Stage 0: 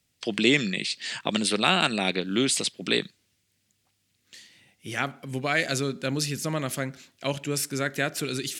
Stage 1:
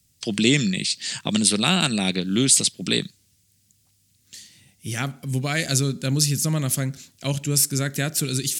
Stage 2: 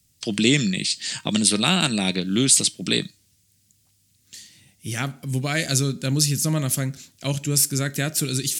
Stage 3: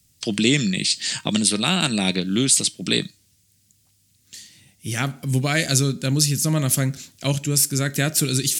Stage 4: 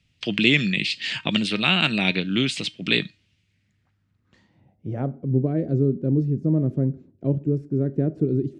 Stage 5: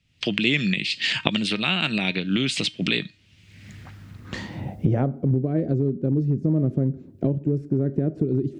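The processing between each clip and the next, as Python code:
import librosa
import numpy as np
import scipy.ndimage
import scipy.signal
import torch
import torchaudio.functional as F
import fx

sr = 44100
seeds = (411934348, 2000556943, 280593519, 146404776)

y1 = fx.bass_treble(x, sr, bass_db=14, treble_db=14)
y1 = y1 * librosa.db_to_amplitude(-2.5)
y2 = fx.comb_fb(y1, sr, f0_hz=310.0, decay_s=0.24, harmonics='all', damping=0.0, mix_pct=50)
y2 = y2 * librosa.db_to_amplitude(5.5)
y3 = fx.rider(y2, sr, range_db=3, speed_s=0.5)
y3 = y3 * librosa.db_to_amplitude(1.5)
y4 = fx.filter_sweep_lowpass(y3, sr, from_hz=2700.0, to_hz=400.0, start_s=3.4, end_s=5.33, q=2.4)
y4 = y4 * librosa.db_to_amplitude(-2.0)
y5 = fx.recorder_agc(y4, sr, target_db=-10.5, rise_db_per_s=42.0, max_gain_db=30)
y5 = y5 * librosa.db_to_amplitude(-3.5)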